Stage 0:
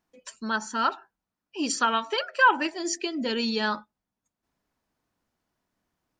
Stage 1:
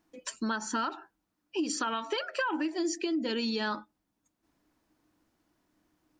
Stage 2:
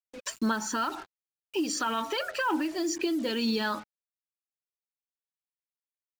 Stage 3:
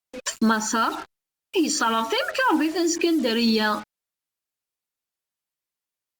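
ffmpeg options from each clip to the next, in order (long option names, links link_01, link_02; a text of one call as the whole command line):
ffmpeg -i in.wav -af "equalizer=frequency=310:width_type=o:width=0.24:gain=14.5,alimiter=limit=-17.5dB:level=0:latency=1:release=67,acompressor=threshold=-33dB:ratio=5,volume=4dB" out.wav
ffmpeg -i in.wav -filter_complex "[0:a]asplit=2[link_01][link_02];[link_02]alimiter=level_in=5.5dB:limit=-24dB:level=0:latency=1:release=26,volume=-5.5dB,volume=3dB[link_03];[link_01][link_03]amix=inputs=2:normalize=0,acrusher=bits=6:mix=0:aa=0.5,aphaser=in_gain=1:out_gain=1:delay=1.8:decay=0.28:speed=2:type=sinusoidal,volume=-3dB" out.wav
ffmpeg -i in.wav -af "volume=7.5dB" -ar 48000 -c:a libopus -b:a 64k out.opus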